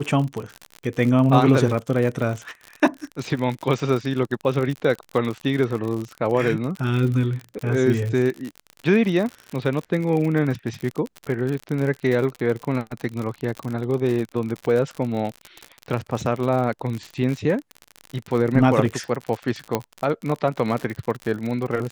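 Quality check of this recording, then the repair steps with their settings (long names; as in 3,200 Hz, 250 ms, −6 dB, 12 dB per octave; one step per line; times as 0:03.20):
surface crackle 58 per second −26 dBFS
0:19.75: click −7 dBFS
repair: click removal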